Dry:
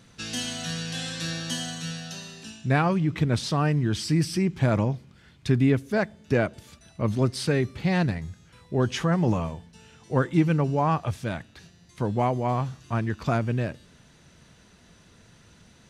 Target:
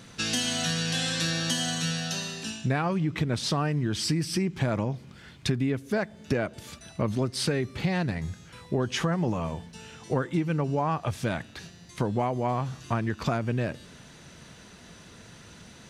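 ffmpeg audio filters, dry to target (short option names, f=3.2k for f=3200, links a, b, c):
-af "lowshelf=f=100:g=-6.5,acompressor=threshold=-31dB:ratio=6,volume=7dB"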